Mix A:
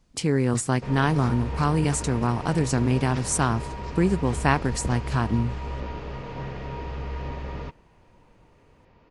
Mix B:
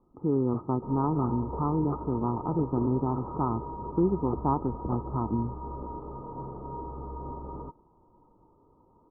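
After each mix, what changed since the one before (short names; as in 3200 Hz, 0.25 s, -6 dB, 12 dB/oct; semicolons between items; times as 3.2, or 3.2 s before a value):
first sound +10.5 dB; second sound: remove air absorption 260 m; master: add rippled Chebyshev low-pass 1300 Hz, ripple 9 dB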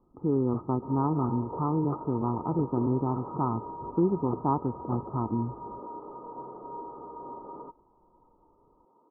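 second sound: add HPF 330 Hz 12 dB/oct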